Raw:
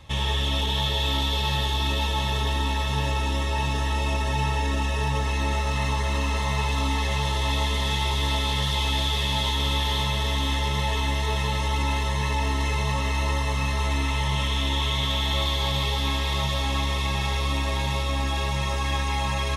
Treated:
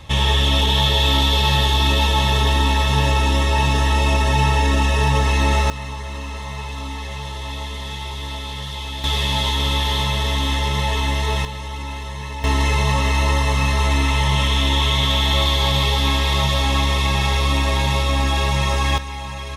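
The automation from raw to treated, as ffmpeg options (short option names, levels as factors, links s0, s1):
-af "asetnsamples=n=441:p=0,asendcmd='5.7 volume volume -4.5dB;9.04 volume volume 4.5dB;11.45 volume volume -4.5dB;12.44 volume volume 7dB;18.98 volume volume -4dB',volume=2.51"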